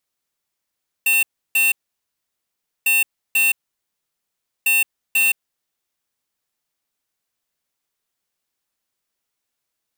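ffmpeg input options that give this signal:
-f lavfi -i "aevalsrc='0.158*(2*lt(mod(2700*t,1),0.5)-1)*clip(min(mod(mod(t,1.8),0.49),0.17-mod(mod(t,1.8),0.49))/0.005,0,1)*lt(mod(t,1.8),0.98)':d=5.4:s=44100"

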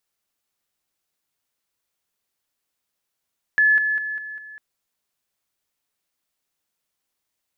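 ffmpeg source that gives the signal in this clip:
-f lavfi -i "aevalsrc='pow(10,(-13-6*floor(t/0.2))/20)*sin(2*PI*1720*t)':d=1:s=44100"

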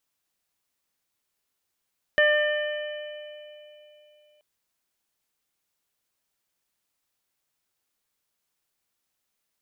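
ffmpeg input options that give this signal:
-f lavfi -i "aevalsrc='0.112*pow(10,-3*t/3.25)*sin(2*PI*599*t)+0.0168*pow(10,-3*t/1.89)*sin(2*PI*1198*t)+0.133*pow(10,-3*t/2)*sin(2*PI*1797*t)+0.015*pow(10,-3*t/3.57)*sin(2*PI*2396*t)+0.0376*pow(10,-3*t/3.33)*sin(2*PI*2995*t)':d=2.23:s=44100"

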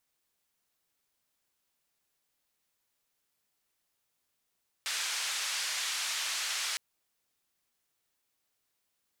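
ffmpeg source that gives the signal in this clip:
-f lavfi -i "anoisesrc=c=white:d=1.91:r=44100:seed=1,highpass=f=1300,lowpass=f=6500,volume=-23.1dB"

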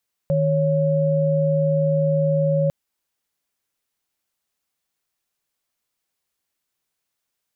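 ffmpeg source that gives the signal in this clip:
-f lavfi -i "aevalsrc='0.112*(sin(2*PI*155.56*t)+sin(2*PI*554.37*t))':d=2.4:s=44100"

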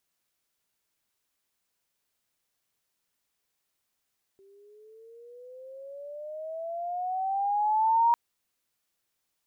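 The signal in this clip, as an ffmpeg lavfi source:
-f lavfi -i "aevalsrc='pow(10,(-18+36*(t/3.75-1))/20)*sin(2*PI*387*3.75/(15.5*log(2)/12)*(exp(15.5*log(2)/12*t/3.75)-1))':d=3.75:s=44100"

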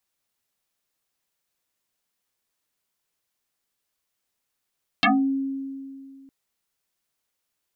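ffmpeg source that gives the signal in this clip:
-f lavfi -i "aevalsrc='0.2*pow(10,-3*t/2.33)*sin(2*PI*271*t+8.9*pow(10,-3*t/0.27)*sin(2*PI*1.8*271*t))':d=1.26:s=44100"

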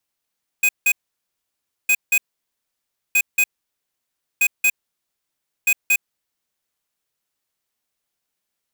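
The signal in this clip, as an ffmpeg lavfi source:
-f lavfi -i "aevalsrc='0.168*(2*lt(mod(2500*t,1),0.5)-1)*clip(min(mod(mod(t,1.26),0.23),0.06-mod(mod(t,1.26),0.23))/0.005,0,1)*lt(mod(t,1.26),0.46)':d=6.3:s=44100"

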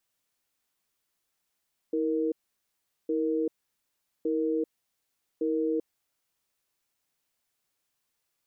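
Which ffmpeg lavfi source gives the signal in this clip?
-f lavfi -i "aevalsrc='0.0422*(sin(2*PI*320*t)+sin(2*PI*467*t))*clip(min(mod(t,1.16),0.39-mod(t,1.16))/0.005,0,1)':d=4.25:s=44100"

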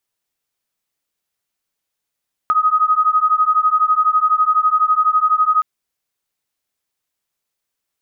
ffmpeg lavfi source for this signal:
-f lavfi -i "aevalsrc='0.178*(sin(2*PI*1250*t)+sin(2*PI*1262*t))':d=3.12:s=44100"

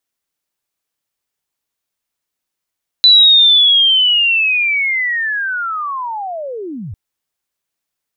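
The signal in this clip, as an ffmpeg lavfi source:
-f lavfi -i "aevalsrc='pow(10,(-3.5-20.5*t/3.9)/20)*sin(2*PI*(4000*t-3920*t*t/(2*3.9)))':d=3.9:s=44100"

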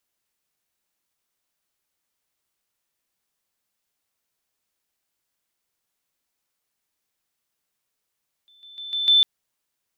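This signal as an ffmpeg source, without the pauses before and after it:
-f lavfi -i "aevalsrc='pow(10,(-52.5+10*floor(t/0.15))/20)*sin(2*PI*3530*t)':d=0.75:s=44100"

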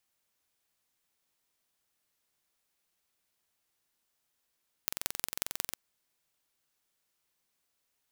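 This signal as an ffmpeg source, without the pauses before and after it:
-f lavfi -i "aevalsrc='0.794*eq(mod(n,1986),0)*(0.5+0.5*eq(mod(n,7944),0))':d=0.86:s=44100"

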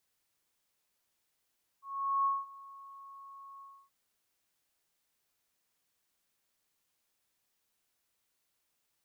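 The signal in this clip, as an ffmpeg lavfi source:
-f lavfi -i "aevalsrc='0.0531*sin(2*PI*1100*t)':d=2.076:s=44100,afade=t=in:d=0.431,afade=t=out:st=0.431:d=0.202:silence=0.0794,afade=t=out:st=1.79:d=0.286"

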